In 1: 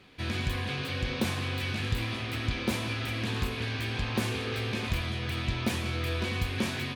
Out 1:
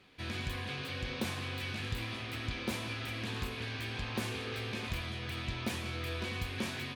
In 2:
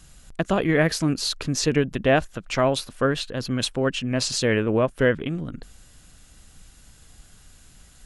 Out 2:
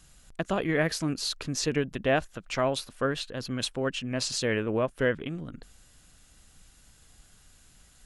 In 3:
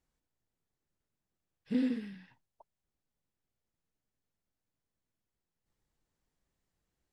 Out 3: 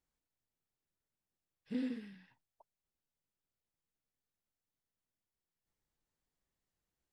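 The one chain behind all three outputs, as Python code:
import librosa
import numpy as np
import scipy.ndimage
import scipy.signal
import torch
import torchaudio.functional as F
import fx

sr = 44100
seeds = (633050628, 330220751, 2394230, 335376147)

y = fx.low_shelf(x, sr, hz=360.0, db=-3.0)
y = y * 10.0 ** (-5.0 / 20.0)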